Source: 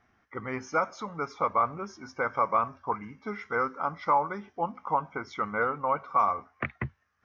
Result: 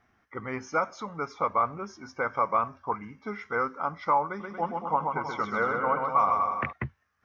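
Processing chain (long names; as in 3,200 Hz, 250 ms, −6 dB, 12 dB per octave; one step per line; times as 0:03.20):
0:04.27–0:06.73: bouncing-ball delay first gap 130 ms, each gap 0.8×, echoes 5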